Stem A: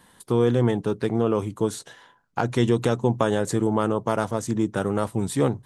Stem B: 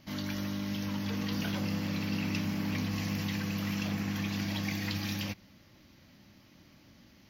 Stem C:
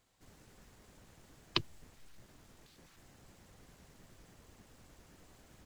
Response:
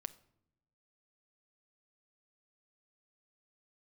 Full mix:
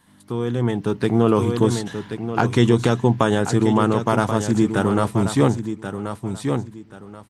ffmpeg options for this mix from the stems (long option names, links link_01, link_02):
-filter_complex "[0:a]acrossover=split=7400[link_01][link_02];[link_02]acompressor=threshold=-48dB:ratio=4:attack=1:release=60[link_03];[link_01][link_03]amix=inputs=2:normalize=0,volume=-4dB,asplit=2[link_04][link_05];[link_05]volume=-9.5dB[link_06];[1:a]lowpass=frequency=1400:poles=1,acompressor=threshold=-36dB:ratio=6,volume=-14dB,asplit=2[link_07][link_08];[link_08]volume=-14.5dB[link_09];[2:a]volume=-19.5dB[link_10];[link_06][link_09]amix=inputs=2:normalize=0,aecho=0:1:1082|2164|3246:1|0.15|0.0225[link_11];[link_04][link_07][link_10][link_11]amix=inputs=4:normalize=0,dynaudnorm=framelen=250:gausssize=7:maxgain=16.5dB,equalizer=frequency=530:width=2.1:gain=-5"